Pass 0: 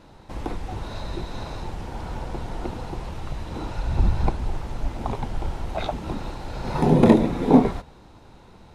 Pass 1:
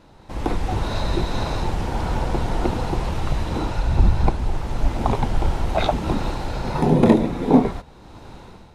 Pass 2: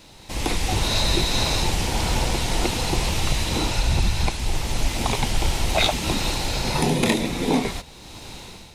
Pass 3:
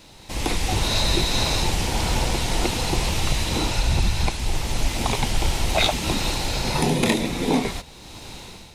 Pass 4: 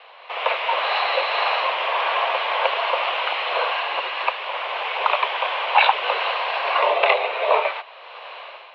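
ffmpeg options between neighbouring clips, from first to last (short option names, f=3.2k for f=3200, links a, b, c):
-af "dynaudnorm=f=160:g=5:m=10dB,volume=-1dB"
-filter_complex "[0:a]acrossover=split=1100[a][b];[a]alimiter=limit=-12dB:level=0:latency=1:release=277[c];[b]aexciter=amount=2:drive=9.5:freq=2k[d];[c][d]amix=inputs=2:normalize=0"
-af anull
-af "highpass=f=390:t=q:w=0.5412,highpass=f=390:t=q:w=1.307,lowpass=f=2.9k:t=q:w=0.5176,lowpass=f=2.9k:t=q:w=0.7071,lowpass=f=2.9k:t=q:w=1.932,afreqshift=180,volume=7.5dB"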